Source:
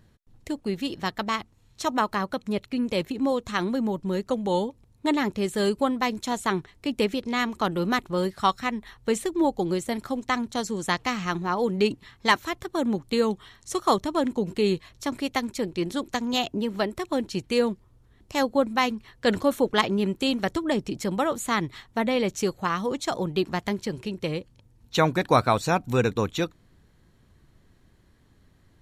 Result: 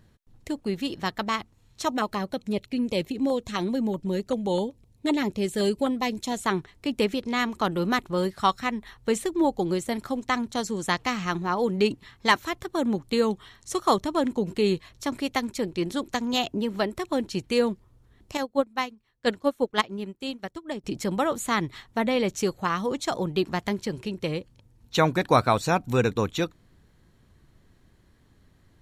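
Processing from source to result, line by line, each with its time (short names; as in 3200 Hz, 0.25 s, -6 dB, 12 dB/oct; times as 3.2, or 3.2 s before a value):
1.89–6.39 LFO notch saw down 7.8 Hz 860–1800 Hz
18.37–20.84 upward expander 2.5:1, over -31 dBFS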